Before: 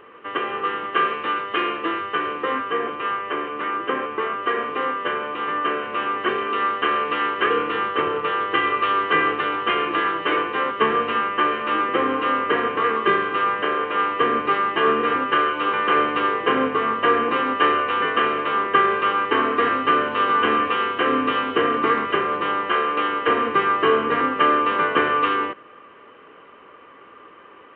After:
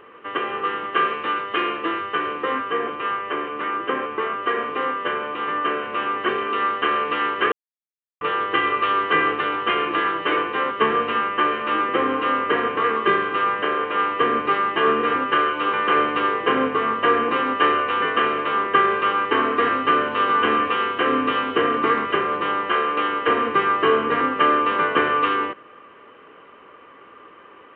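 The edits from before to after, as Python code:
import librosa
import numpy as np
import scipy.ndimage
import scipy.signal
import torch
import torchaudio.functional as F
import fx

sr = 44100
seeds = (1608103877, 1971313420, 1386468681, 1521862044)

y = fx.edit(x, sr, fx.silence(start_s=7.52, length_s=0.69), tone=tone)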